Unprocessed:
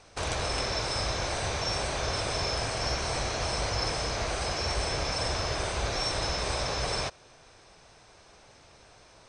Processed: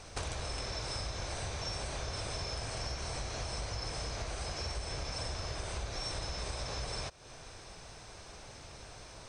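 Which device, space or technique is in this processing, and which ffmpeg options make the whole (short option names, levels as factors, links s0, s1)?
ASMR close-microphone chain: -af "lowshelf=f=150:g=7.5,acompressor=threshold=0.01:ratio=6,highshelf=f=6500:g=6.5,volume=1.41"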